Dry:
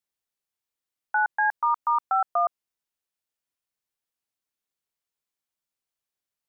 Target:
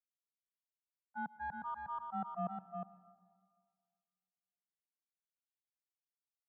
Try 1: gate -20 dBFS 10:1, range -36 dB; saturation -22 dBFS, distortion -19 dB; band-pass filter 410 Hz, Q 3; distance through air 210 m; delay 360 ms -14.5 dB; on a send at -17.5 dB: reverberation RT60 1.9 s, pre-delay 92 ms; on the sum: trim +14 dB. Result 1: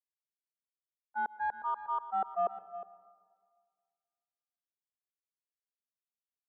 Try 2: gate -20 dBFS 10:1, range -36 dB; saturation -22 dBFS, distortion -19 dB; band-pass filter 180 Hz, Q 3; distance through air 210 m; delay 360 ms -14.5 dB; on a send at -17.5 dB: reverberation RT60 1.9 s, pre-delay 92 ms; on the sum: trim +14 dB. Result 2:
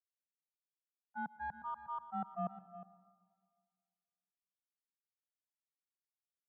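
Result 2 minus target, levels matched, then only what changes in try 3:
echo-to-direct -7.5 dB
change: delay 360 ms -5.5 dB

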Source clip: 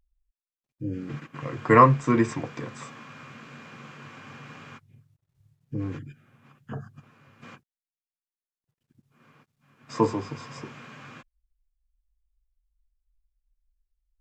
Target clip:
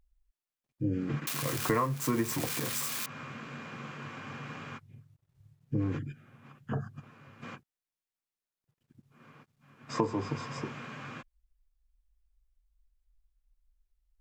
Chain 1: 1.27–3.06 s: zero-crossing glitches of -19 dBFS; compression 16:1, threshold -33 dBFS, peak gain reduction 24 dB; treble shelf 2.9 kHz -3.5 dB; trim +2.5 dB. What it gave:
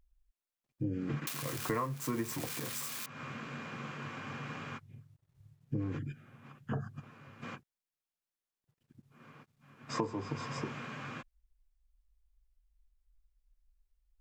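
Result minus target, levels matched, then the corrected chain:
compression: peak gain reduction +5.5 dB
1.27–3.06 s: zero-crossing glitches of -19 dBFS; compression 16:1, threshold -27 dBFS, peak gain reduction 18 dB; treble shelf 2.9 kHz -3.5 dB; trim +2.5 dB

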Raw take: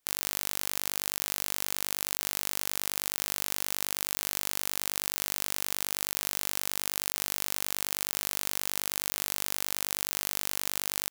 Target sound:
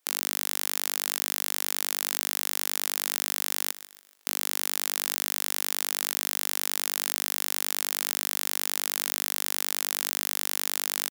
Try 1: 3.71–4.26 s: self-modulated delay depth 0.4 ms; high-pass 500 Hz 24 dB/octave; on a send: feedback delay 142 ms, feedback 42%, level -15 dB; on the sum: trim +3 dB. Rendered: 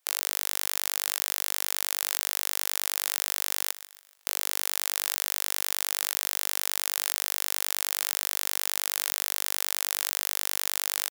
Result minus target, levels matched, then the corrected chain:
250 Hz band -15.5 dB
3.71–4.26 s: self-modulated delay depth 0.4 ms; high-pass 250 Hz 24 dB/octave; on a send: feedback delay 142 ms, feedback 42%, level -15 dB; on the sum: trim +3 dB

